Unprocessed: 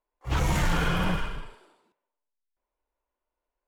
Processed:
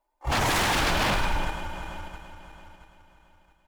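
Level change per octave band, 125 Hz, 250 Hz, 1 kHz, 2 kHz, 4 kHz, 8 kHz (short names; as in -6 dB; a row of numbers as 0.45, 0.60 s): -3.0, -1.0, +6.0, +5.5, +8.0, +7.5 dB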